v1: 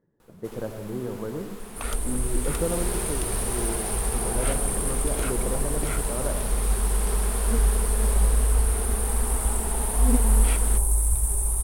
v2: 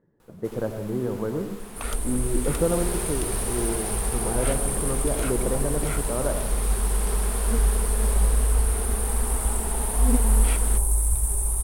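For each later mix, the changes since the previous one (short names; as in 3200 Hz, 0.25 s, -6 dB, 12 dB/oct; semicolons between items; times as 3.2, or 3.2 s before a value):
speech +4.5 dB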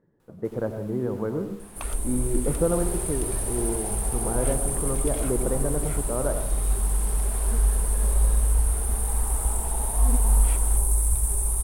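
first sound -8.5 dB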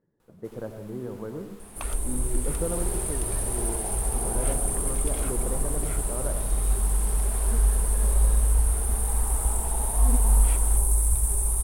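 speech -7.5 dB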